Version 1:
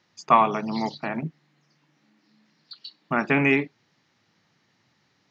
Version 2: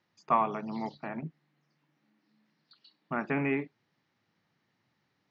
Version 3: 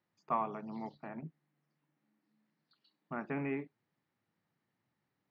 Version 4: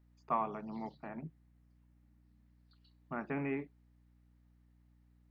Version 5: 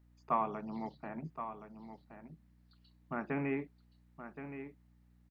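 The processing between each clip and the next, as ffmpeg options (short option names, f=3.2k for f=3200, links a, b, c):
-filter_complex "[0:a]aemphasis=mode=reproduction:type=50fm,acrossover=split=2600[a][b];[b]acompressor=threshold=-47dB:ratio=4:attack=1:release=60[c];[a][c]amix=inputs=2:normalize=0,volume=-8.5dB"
-af "highshelf=f=2.5k:g=-8.5,volume=-6.5dB"
-af "aeval=exprs='val(0)+0.000562*(sin(2*PI*60*n/s)+sin(2*PI*2*60*n/s)/2+sin(2*PI*3*60*n/s)/3+sin(2*PI*4*60*n/s)/4+sin(2*PI*5*60*n/s)/5)':c=same"
-af "aecho=1:1:1072:0.316,volume=1.5dB"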